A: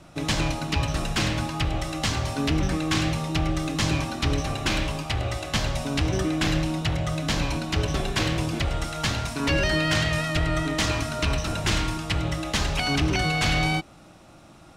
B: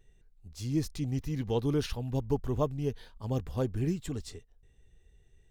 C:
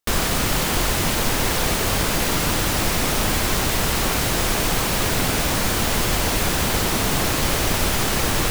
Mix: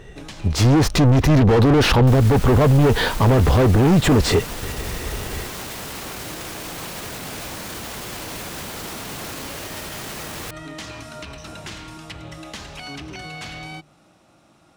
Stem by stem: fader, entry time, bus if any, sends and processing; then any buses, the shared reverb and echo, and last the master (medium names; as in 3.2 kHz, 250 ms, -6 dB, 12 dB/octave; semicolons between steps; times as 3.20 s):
-5.0 dB, 0.00 s, bus A, no send, hum notches 50/100/150 Hz; compression, threshold -25 dBFS, peak gain reduction 6.5 dB; auto duck -16 dB, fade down 1.50 s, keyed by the second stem
+1.5 dB, 0.00 s, no bus, no send, bass shelf 160 Hz +10 dB; level rider gain up to 11 dB; overdrive pedal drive 38 dB, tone 1.2 kHz, clips at -3.5 dBFS
-3.5 dB, 2.00 s, bus A, no send, none
bus A: 0.0 dB, high-pass 110 Hz 6 dB/octave; peak limiter -23 dBFS, peak gain reduction 11.5 dB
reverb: none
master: peak limiter -9.5 dBFS, peak gain reduction 7.5 dB